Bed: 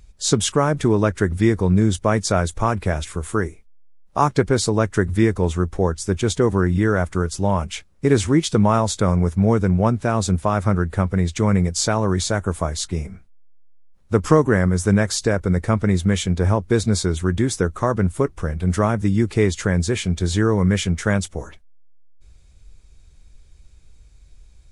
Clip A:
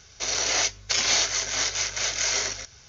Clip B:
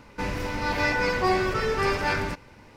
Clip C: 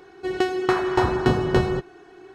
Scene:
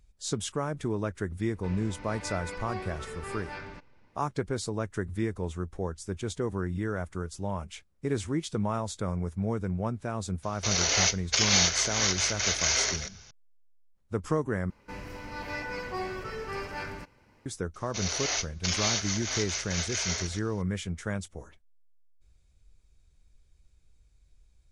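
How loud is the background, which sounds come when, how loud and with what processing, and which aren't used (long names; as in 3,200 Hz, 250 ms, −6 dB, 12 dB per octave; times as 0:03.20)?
bed −13.5 dB
0:01.45: mix in B −15 dB + low-pass filter 5,500 Hz
0:10.43: mix in A −1 dB
0:14.70: overwrite with B −11.5 dB + notch filter 3,600 Hz, Q 11
0:17.74: mix in A −6.5 dB
not used: C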